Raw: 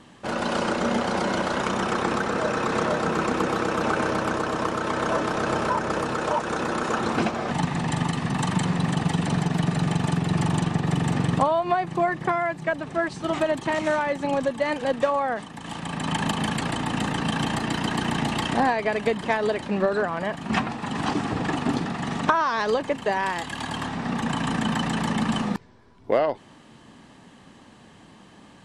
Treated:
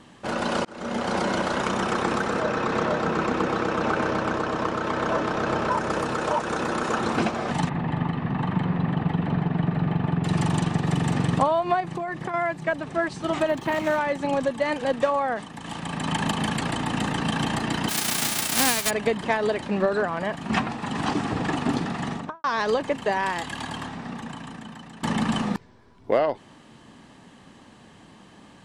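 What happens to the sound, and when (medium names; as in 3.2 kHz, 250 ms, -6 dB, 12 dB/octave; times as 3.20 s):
0.65–1.13 s: fade in
2.40–5.71 s: distance through air 72 m
7.69–10.24 s: distance through air 470 m
11.80–12.34 s: compression, threshold -26 dBFS
13.48–13.98 s: decimation joined by straight lines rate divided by 3×
17.88–18.89 s: formants flattened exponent 0.1
22.01–22.44 s: studio fade out
23.47–25.03 s: fade out quadratic, to -18 dB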